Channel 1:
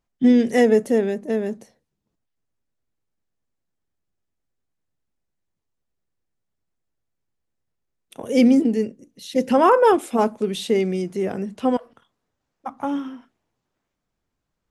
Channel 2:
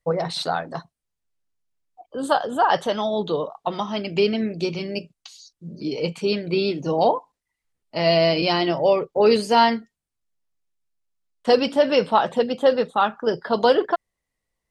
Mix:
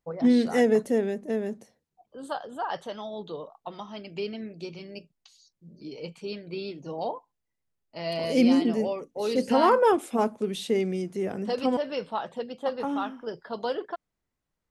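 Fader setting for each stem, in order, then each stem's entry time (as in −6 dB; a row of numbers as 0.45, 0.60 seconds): −5.5, −13.0 decibels; 0.00, 0.00 seconds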